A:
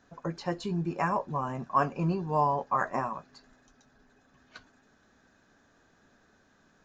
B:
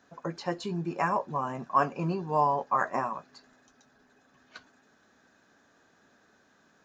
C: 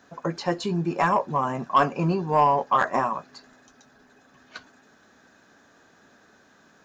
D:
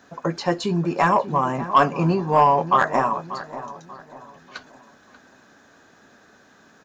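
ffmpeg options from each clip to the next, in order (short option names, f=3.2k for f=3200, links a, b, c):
-af "highpass=f=210:p=1,volume=1.5dB"
-af "asoftclip=type=tanh:threshold=-16.5dB,volume=7dB"
-filter_complex "[0:a]asplit=2[a][b];[b]adelay=588,lowpass=f=1.7k:p=1,volume=-13dB,asplit=2[c][d];[d]adelay=588,lowpass=f=1.7k:p=1,volume=0.4,asplit=2[e][f];[f]adelay=588,lowpass=f=1.7k:p=1,volume=0.4,asplit=2[g][h];[h]adelay=588,lowpass=f=1.7k:p=1,volume=0.4[i];[a][c][e][g][i]amix=inputs=5:normalize=0,volume=3.5dB"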